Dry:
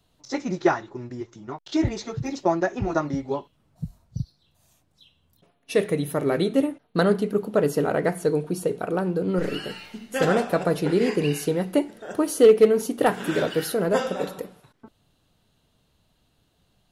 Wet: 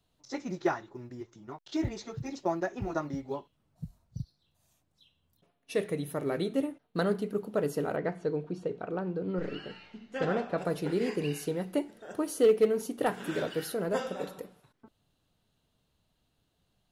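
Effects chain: short-mantissa float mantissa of 6-bit; 7.96–10.58 air absorption 150 m; gain -8.5 dB

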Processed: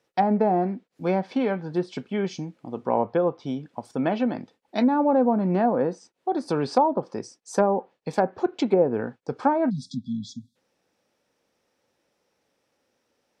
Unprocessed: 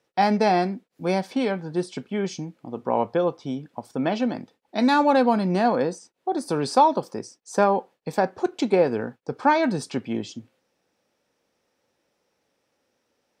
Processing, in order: treble ducked by the level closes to 750 Hz, closed at -15.5 dBFS; spectral delete 9.7–10.56, 270–3300 Hz

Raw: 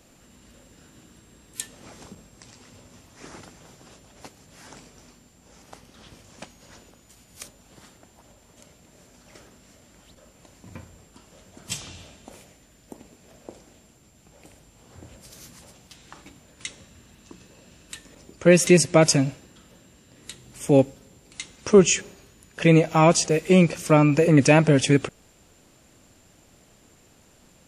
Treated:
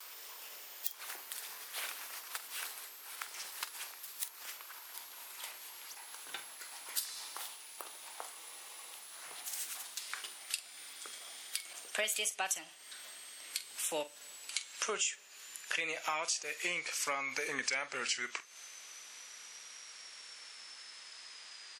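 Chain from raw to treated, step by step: speed glide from 187% -> 67%; HPF 1400 Hz 12 dB/oct; gate with hold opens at -53 dBFS; compressor 5:1, threshold -43 dBFS, peak gain reduction 23 dB; doubler 46 ms -14 dB; spectral freeze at 8.37, 0.55 s; mismatched tape noise reduction encoder only; gain +8 dB

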